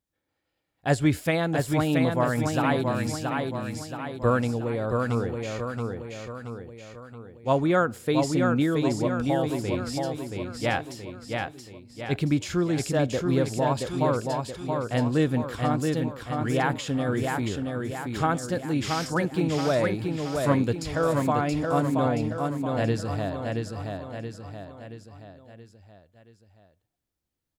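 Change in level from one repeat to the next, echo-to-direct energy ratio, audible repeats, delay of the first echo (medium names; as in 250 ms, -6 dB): -6.0 dB, -3.0 dB, 5, 676 ms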